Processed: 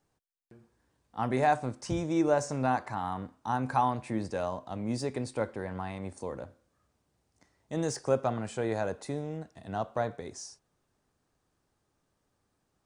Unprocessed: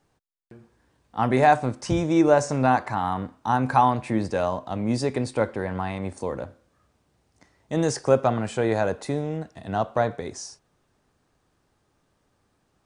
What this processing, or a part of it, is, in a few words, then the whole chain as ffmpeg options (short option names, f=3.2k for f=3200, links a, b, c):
exciter from parts: -filter_complex "[0:a]asplit=2[a][b];[b]highpass=4.1k,asoftclip=type=tanh:threshold=-29.5dB,volume=-6dB[c];[a][c]amix=inputs=2:normalize=0,volume=-8dB"